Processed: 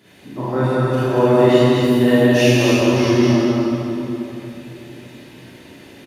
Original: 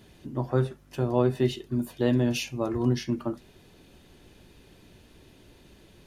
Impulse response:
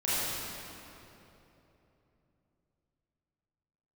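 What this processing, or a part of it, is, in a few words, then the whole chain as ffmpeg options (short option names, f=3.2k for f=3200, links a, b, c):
stadium PA: -filter_complex "[0:a]highpass=160,equalizer=f=2k:t=o:w=0.62:g=6.5,aecho=1:1:160.3|233.2:0.316|0.631[a];[1:a]atrim=start_sample=2205[b];[a][b]afir=irnorm=-1:irlink=0,volume=1dB"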